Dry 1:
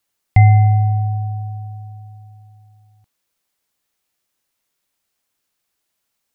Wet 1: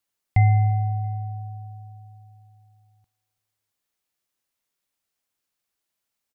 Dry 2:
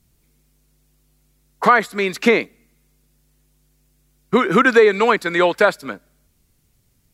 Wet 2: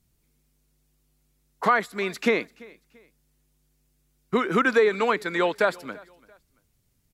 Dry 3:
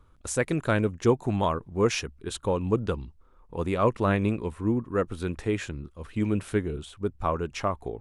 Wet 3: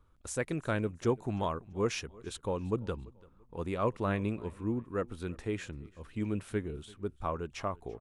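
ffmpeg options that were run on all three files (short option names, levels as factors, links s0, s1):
-af "aecho=1:1:339|678:0.0668|0.0221,volume=0.422"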